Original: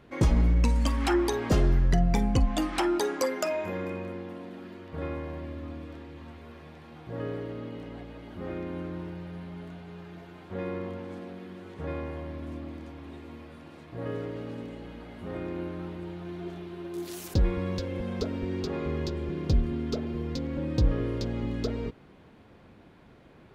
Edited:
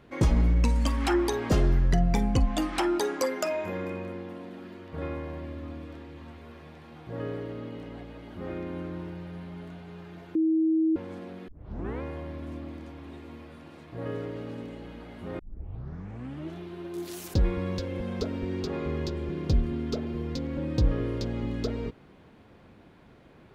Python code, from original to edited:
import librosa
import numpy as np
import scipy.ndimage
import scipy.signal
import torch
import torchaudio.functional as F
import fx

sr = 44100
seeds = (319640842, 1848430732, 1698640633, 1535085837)

y = fx.edit(x, sr, fx.bleep(start_s=10.35, length_s=0.61, hz=320.0, db=-20.5),
    fx.tape_start(start_s=11.48, length_s=0.54),
    fx.tape_start(start_s=15.39, length_s=1.17), tone=tone)